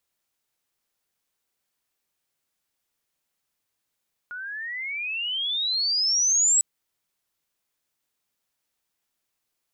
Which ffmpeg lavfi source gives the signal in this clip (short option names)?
-f lavfi -i "aevalsrc='pow(10,(-16+16.5*(t/2.3-1))/20)*sin(2*PI*1430*2.3/(29.5*log(2)/12)*(exp(29.5*log(2)/12*t/2.3)-1))':d=2.3:s=44100"